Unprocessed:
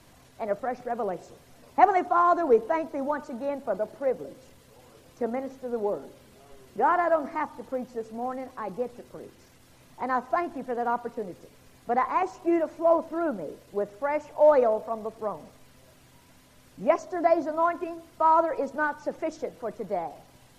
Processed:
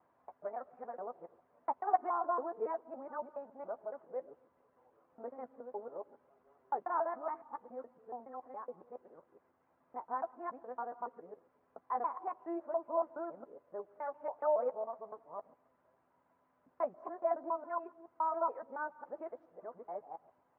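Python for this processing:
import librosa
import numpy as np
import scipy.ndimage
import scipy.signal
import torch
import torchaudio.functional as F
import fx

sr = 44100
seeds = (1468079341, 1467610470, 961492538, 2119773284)

y = fx.local_reverse(x, sr, ms=140.0)
y = scipy.signal.sosfilt(scipy.signal.butter(4, 1100.0, 'lowpass', fs=sr, output='sos'), y)
y = np.diff(y, prepend=0.0)
y = fx.doubler(y, sr, ms=12.0, db=-10.5)
y = y * librosa.db_to_amplitude(8.0)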